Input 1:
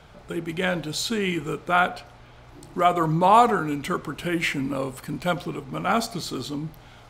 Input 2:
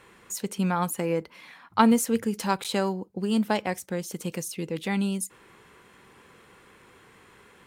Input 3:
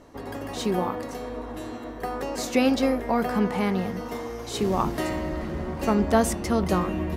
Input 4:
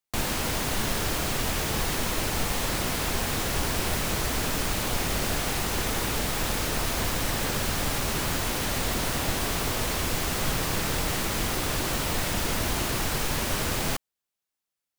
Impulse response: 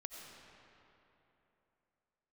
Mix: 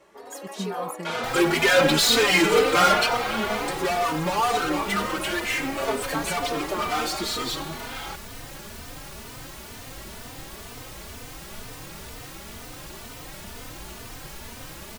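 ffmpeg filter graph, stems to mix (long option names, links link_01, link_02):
-filter_complex "[0:a]asplit=2[link_01][link_02];[link_02]highpass=frequency=720:poles=1,volume=38dB,asoftclip=type=tanh:threshold=-5dB[link_03];[link_01][link_03]amix=inputs=2:normalize=0,lowpass=frequency=5600:poles=1,volume=-6dB,highpass=frequency=260:poles=1,asplit=2[link_04][link_05];[link_05]adelay=5.9,afreqshift=0.47[link_06];[link_04][link_06]amix=inputs=2:normalize=1,adelay=1050,volume=-2dB,afade=type=out:start_time=3.44:duration=0.52:silence=0.375837,asplit=2[link_07][link_08];[link_08]volume=-4.5dB[link_09];[1:a]volume=-5dB[link_10];[2:a]highpass=frequency=380:width=0.5412,highpass=frequency=380:width=1.3066,volume=-1dB[link_11];[3:a]acrusher=bits=5:mix=0:aa=0.000001,adelay=1100,volume=-9.5dB[link_12];[4:a]atrim=start_sample=2205[link_13];[link_09][link_13]afir=irnorm=-1:irlink=0[link_14];[link_07][link_10][link_11][link_12][link_14]amix=inputs=5:normalize=0,asplit=2[link_15][link_16];[link_16]adelay=3.2,afreqshift=2.1[link_17];[link_15][link_17]amix=inputs=2:normalize=1"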